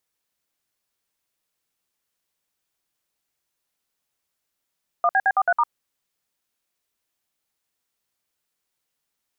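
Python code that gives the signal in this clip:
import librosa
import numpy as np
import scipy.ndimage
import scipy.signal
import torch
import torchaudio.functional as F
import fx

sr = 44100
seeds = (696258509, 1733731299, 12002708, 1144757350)

y = fx.dtmf(sr, digits='1BB43*', tone_ms=51, gap_ms=58, level_db=-18.0)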